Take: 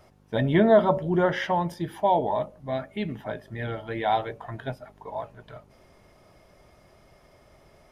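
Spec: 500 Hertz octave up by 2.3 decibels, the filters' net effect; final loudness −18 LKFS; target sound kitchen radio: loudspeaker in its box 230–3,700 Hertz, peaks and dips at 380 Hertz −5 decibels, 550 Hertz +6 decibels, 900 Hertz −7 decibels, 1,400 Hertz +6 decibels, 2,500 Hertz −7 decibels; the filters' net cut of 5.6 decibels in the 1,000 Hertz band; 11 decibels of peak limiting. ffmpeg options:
ffmpeg -i in.wav -af "equalizer=frequency=500:width_type=o:gain=3.5,equalizer=frequency=1000:width_type=o:gain=-7.5,alimiter=limit=-19dB:level=0:latency=1,highpass=230,equalizer=frequency=380:width_type=q:width=4:gain=-5,equalizer=frequency=550:width_type=q:width=4:gain=6,equalizer=frequency=900:width_type=q:width=4:gain=-7,equalizer=frequency=1400:width_type=q:width=4:gain=6,equalizer=frequency=2500:width_type=q:width=4:gain=-7,lowpass=frequency=3700:width=0.5412,lowpass=frequency=3700:width=1.3066,volume=12.5dB" out.wav

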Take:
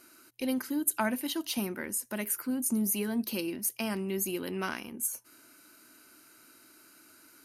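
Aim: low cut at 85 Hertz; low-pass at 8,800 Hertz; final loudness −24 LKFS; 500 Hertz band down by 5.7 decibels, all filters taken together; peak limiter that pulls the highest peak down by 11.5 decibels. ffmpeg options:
ffmpeg -i in.wav -af "highpass=85,lowpass=8800,equalizer=frequency=500:width_type=o:gain=-8.5,volume=15dB,alimiter=limit=-15dB:level=0:latency=1" out.wav

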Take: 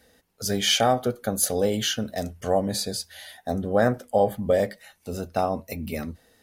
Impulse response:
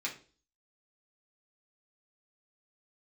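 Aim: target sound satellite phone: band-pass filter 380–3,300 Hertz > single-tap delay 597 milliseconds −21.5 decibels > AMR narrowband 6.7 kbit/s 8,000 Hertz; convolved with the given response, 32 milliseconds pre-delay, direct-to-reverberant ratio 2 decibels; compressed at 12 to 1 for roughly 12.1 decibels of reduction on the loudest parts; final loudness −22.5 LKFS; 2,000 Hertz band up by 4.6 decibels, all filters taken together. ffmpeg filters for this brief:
-filter_complex "[0:a]equalizer=frequency=2000:width_type=o:gain=6.5,acompressor=threshold=-27dB:ratio=12,asplit=2[link_01][link_02];[1:a]atrim=start_sample=2205,adelay=32[link_03];[link_02][link_03]afir=irnorm=-1:irlink=0,volume=-5dB[link_04];[link_01][link_04]amix=inputs=2:normalize=0,highpass=380,lowpass=3300,aecho=1:1:597:0.0841,volume=14dB" -ar 8000 -c:a libopencore_amrnb -b:a 6700

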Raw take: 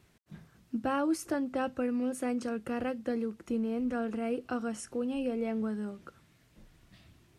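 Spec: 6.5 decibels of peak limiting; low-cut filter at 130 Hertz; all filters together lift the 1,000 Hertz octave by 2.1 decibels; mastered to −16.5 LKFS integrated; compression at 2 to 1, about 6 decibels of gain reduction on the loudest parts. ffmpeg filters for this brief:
ffmpeg -i in.wav -af "highpass=130,equalizer=frequency=1000:width_type=o:gain=3,acompressor=threshold=-36dB:ratio=2,volume=23dB,alimiter=limit=-7.5dB:level=0:latency=1" out.wav

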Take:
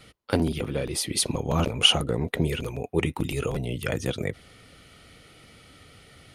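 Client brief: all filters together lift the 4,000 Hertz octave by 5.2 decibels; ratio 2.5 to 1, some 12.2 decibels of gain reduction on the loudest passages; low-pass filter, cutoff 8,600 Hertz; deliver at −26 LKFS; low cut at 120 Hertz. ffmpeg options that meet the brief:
ffmpeg -i in.wav -af "highpass=120,lowpass=8600,equalizer=frequency=4000:width_type=o:gain=8.5,acompressor=threshold=-27dB:ratio=2.5,volume=4dB" out.wav

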